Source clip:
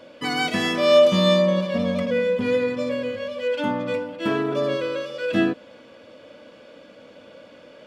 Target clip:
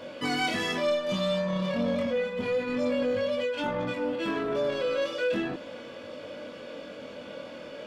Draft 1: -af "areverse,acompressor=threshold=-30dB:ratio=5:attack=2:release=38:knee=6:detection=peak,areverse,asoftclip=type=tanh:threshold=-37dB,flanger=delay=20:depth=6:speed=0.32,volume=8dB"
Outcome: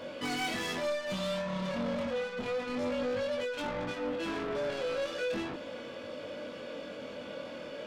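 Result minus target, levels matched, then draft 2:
soft clipping: distortion +11 dB
-af "areverse,acompressor=threshold=-30dB:ratio=5:attack=2:release=38:knee=6:detection=peak,areverse,asoftclip=type=tanh:threshold=-26.5dB,flanger=delay=20:depth=6:speed=0.32,volume=8dB"

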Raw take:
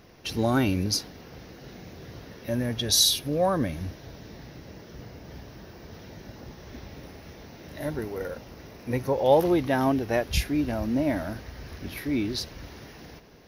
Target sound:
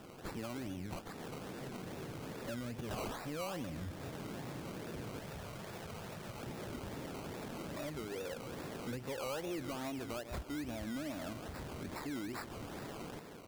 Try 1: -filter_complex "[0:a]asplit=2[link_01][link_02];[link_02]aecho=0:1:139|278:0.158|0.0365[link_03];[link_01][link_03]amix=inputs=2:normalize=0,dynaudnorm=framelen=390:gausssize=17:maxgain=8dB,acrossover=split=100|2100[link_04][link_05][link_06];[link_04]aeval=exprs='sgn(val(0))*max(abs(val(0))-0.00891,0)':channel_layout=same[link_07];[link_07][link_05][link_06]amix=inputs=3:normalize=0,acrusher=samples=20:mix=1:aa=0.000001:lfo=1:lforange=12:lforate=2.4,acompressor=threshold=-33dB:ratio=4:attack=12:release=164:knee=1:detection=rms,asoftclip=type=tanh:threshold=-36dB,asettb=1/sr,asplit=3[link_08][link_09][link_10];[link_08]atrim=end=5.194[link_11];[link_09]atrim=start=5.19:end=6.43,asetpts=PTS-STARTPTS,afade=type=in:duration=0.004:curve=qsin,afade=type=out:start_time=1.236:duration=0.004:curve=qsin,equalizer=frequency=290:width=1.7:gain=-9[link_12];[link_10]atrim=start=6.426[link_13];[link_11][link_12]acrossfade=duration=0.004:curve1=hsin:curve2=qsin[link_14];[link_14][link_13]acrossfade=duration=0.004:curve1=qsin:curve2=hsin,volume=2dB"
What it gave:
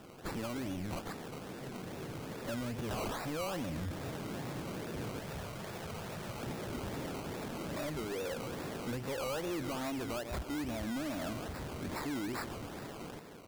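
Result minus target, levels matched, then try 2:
downward compressor: peak gain reduction −7 dB
-filter_complex "[0:a]asplit=2[link_01][link_02];[link_02]aecho=0:1:139|278:0.158|0.0365[link_03];[link_01][link_03]amix=inputs=2:normalize=0,dynaudnorm=framelen=390:gausssize=17:maxgain=8dB,acrossover=split=100|2100[link_04][link_05][link_06];[link_04]aeval=exprs='sgn(val(0))*max(abs(val(0))-0.00891,0)':channel_layout=same[link_07];[link_07][link_05][link_06]amix=inputs=3:normalize=0,acrusher=samples=20:mix=1:aa=0.000001:lfo=1:lforange=12:lforate=2.4,acompressor=threshold=-42.5dB:ratio=4:attack=12:release=164:knee=1:detection=rms,asoftclip=type=tanh:threshold=-36dB,asettb=1/sr,asplit=3[link_08][link_09][link_10];[link_08]atrim=end=5.194[link_11];[link_09]atrim=start=5.19:end=6.43,asetpts=PTS-STARTPTS,afade=type=in:duration=0.004:curve=qsin,afade=type=out:start_time=1.236:duration=0.004:curve=qsin,equalizer=frequency=290:width=1.7:gain=-9[link_12];[link_10]atrim=start=6.426[link_13];[link_11][link_12]acrossfade=duration=0.004:curve1=hsin:curve2=qsin[link_14];[link_14][link_13]acrossfade=duration=0.004:curve1=qsin:curve2=hsin,volume=2dB"

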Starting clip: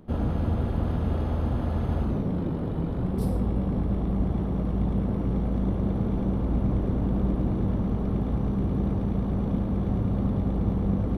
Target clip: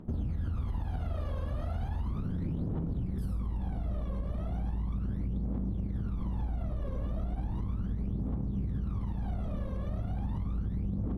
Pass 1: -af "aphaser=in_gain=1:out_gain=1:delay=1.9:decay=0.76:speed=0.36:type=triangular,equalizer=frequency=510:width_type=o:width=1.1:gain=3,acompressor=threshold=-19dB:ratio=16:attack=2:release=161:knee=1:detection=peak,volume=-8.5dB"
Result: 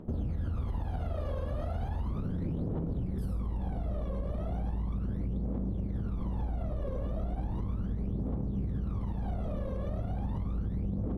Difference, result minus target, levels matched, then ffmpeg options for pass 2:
500 Hz band +4.5 dB
-af "aphaser=in_gain=1:out_gain=1:delay=1.9:decay=0.76:speed=0.36:type=triangular,equalizer=frequency=510:width_type=o:width=1.1:gain=-3.5,acompressor=threshold=-19dB:ratio=16:attack=2:release=161:knee=1:detection=peak,volume=-8.5dB"

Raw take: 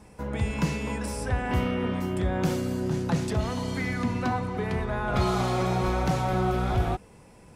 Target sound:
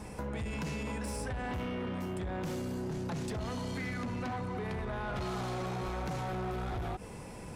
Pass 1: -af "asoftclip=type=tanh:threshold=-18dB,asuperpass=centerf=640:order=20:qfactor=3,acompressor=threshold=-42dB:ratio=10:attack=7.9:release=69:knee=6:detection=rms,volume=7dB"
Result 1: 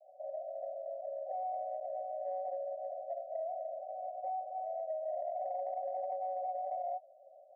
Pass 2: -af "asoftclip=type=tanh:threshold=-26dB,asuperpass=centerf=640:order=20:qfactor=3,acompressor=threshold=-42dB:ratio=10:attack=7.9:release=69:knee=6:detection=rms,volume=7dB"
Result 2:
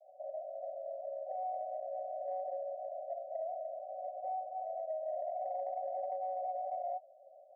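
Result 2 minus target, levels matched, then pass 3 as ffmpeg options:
500 Hz band +4.5 dB
-af "asoftclip=type=tanh:threshold=-26dB,acompressor=threshold=-42dB:ratio=10:attack=7.9:release=69:knee=6:detection=rms,volume=7dB"

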